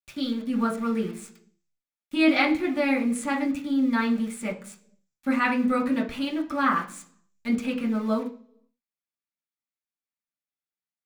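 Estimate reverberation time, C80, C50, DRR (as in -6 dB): 0.45 s, 17.0 dB, 11.5 dB, -3.5 dB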